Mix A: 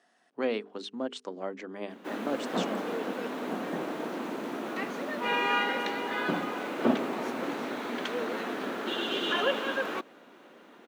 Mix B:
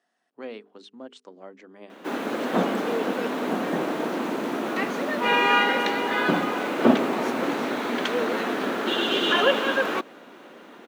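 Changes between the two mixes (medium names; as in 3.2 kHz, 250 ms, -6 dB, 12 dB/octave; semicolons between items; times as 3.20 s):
speech -7.5 dB; background +7.5 dB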